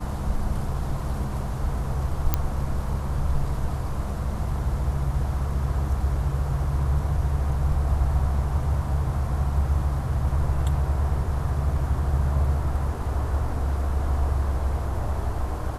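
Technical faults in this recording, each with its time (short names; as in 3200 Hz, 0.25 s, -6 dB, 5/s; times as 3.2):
2.34 pop -7 dBFS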